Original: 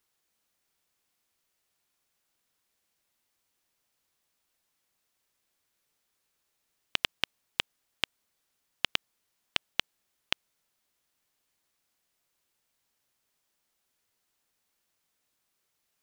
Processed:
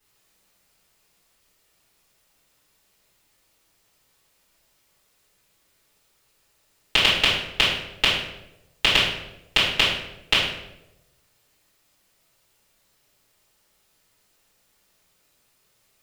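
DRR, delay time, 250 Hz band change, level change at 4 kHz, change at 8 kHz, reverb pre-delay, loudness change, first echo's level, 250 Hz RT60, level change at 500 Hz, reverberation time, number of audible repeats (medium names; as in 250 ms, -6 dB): -11.0 dB, no echo, +14.5 dB, +13.5 dB, +12.0 dB, 3 ms, +12.5 dB, no echo, 1.0 s, +15.5 dB, 0.90 s, no echo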